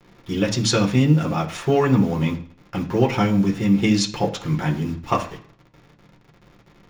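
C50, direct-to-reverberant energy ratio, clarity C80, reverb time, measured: 13.0 dB, −1.5 dB, 17.0 dB, 0.50 s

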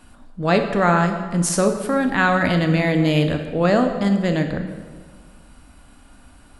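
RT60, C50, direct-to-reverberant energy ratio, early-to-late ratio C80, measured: 1.6 s, 7.5 dB, 5.5 dB, 9.0 dB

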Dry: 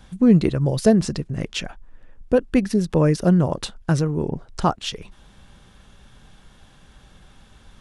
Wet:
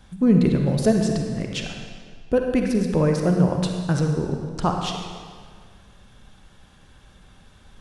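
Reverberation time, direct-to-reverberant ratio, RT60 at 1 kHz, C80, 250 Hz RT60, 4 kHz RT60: 1.8 s, 2.5 dB, 1.8 s, 5.0 dB, 1.8 s, 1.5 s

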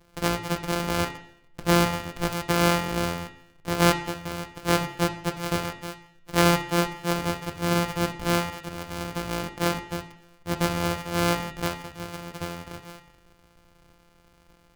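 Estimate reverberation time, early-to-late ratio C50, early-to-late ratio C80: 0.70 s, 10.5 dB, 13.0 dB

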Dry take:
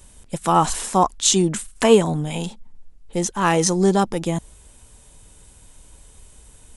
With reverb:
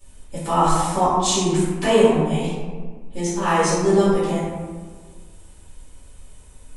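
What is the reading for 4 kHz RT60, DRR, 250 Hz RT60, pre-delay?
0.75 s, −13.0 dB, 1.8 s, 3 ms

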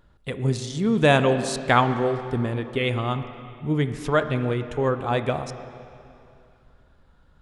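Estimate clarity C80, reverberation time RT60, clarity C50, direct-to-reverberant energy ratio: 10.5 dB, 2.7 s, 10.0 dB, 9.0 dB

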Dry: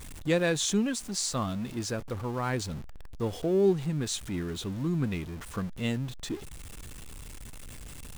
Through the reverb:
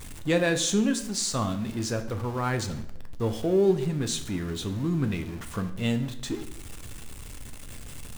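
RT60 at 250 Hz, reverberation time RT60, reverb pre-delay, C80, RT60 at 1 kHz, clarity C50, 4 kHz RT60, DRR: 0.95 s, 0.75 s, 7 ms, 15.0 dB, 0.70 s, 12.0 dB, 0.60 s, 7.0 dB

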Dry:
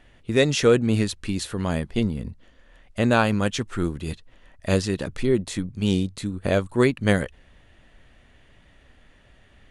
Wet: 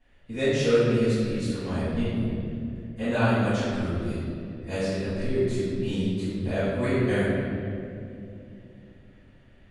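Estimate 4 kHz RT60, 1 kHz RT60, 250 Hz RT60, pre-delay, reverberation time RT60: 1.5 s, 2.1 s, 3.9 s, 4 ms, 2.7 s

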